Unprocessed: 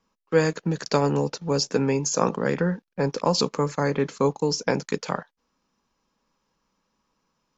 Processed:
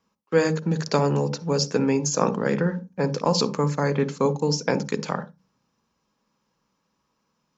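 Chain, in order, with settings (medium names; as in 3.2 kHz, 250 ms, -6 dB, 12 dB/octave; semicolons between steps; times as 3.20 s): high-pass 55 Hz; on a send: reverberation RT60 0.20 s, pre-delay 47 ms, DRR 15 dB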